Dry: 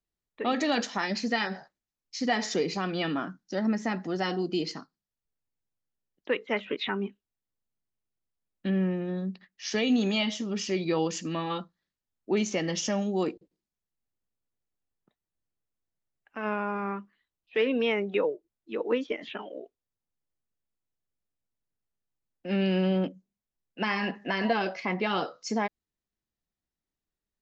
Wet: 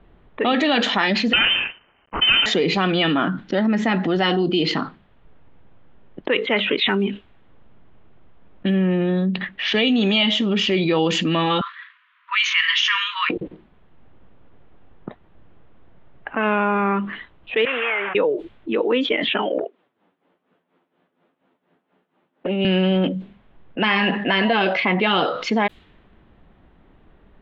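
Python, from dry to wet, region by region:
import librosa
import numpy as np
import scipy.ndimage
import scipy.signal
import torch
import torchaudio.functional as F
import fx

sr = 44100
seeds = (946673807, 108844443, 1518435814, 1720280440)

y = fx.chain(x, sr, fx.halfwave_hold(),
    fx.highpass(hz=200.0, slope=24),
    fx.freq_invert(carrier_hz=3300), at=(1.33, 2.46))
y = fx.chain(y, sr, fx.block_float(bits=7),
    fx.dynamic_eq(hz=1100.0, q=1.3, threshold_db=-47.0, ratio=4.0, max_db=-5), at=(6.88, 8.74))
y = fx.chain(y, sr, fx.brickwall_bandpass(low_hz=950.0, high_hz=6800.0),
    fx.peak_eq(hz=2000.0, db=9.5, octaves=1.5), at=(11.61, 13.3))
y = fx.chain(y, sr, fx.delta_mod(bps=16000, step_db=-33.0),
    fx.highpass(hz=1400.0, slope=12),
    fx.air_absorb(metres=500.0), at=(17.65, 18.15))
y = fx.chain(y, sr, fx.highpass(hz=200.0, slope=24),
    fx.env_flanger(rest_ms=11.6, full_db=-34.5),
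    fx.tremolo(hz=4.2, depth=0.75), at=(19.58, 22.65))
y = fx.env_lowpass(y, sr, base_hz=1200.0, full_db=-24.5)
y = fx.high_shelf_res(y, sr, hz=4300.0, db=-8.5, q=3.0)
y = fx.env_flatten(y, sr, amount_pct=70)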